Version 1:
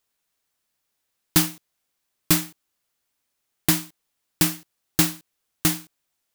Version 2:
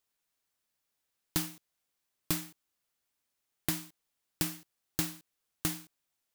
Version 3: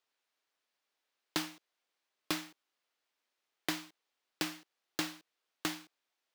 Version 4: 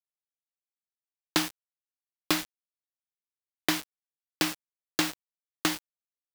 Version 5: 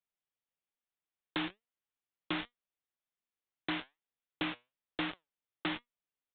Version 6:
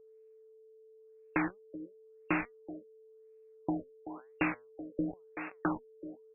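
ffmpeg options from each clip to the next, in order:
-af "acompressor=threshold=-24dB:ratio=3,volume=-6dB"
-filter_complex "[0:a]acrossover=split=270 5400:gain=0.0891 1 0.178[a][b][c];[a][b][c]amix=inputs=3:normalize=0,volume=3dB"
-af "acrusher=bits=6:mix=0:aa=0.000001,volume=8.5dB"
-af "acompressor=threshold=-26dB:ratio=6,flanger=delay=4.1:depth=4.2:regen=80:speed=1.2:shape=sinusoidal,aresample=8000,asoftclip=type=tanh:threshold=-35dB,aresample=44100,volume=7dB"
-filter_complex "[0:a]asplit=2[a][b];[b]adelay=380,highpass=300,lowpass=3.4k,asoftclip=type=hard:threshold=-32dB,volume=-7dB[c];[a][c]amix=inputs=2:normalize=0,aeval=exprs='val(0)+0.000891*sin(2*PI*440*n/s)':c=same,afftfilt=real='re*lt(b*sr/1024,580*pow(2800/580,0.5+0.5*sin(2*PI*0.96*pts/sr)))':imag='im*lt(b*sr/1024,580*pow(2800/580,0.5+0.5*sin(2*PI*0.96*pts/sr)))':win_size=1024:overlap=0.75,volume=5.5dB"

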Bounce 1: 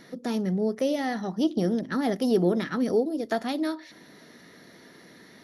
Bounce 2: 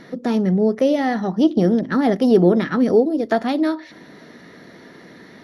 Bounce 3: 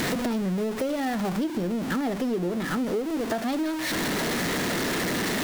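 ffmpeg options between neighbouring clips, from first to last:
-af "lowpass=f=2.4k:p=1,volume=9dB"
-af "aeval=exprs='val(0)+0.5*0.141*sgn(val(0))':c=same,acompressor=threshold=-22dB:ratio=6,volume=-3.5dB"

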